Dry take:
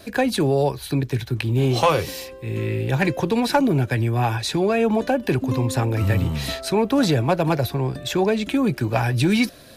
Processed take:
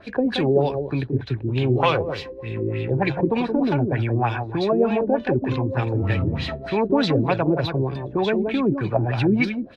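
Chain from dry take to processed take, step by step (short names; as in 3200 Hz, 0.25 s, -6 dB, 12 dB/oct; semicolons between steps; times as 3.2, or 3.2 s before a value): outdoor echo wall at 30 m, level -7 dB; LFO low-pass sine 3.3 Hz 330–3800 Hz; gain -3 dB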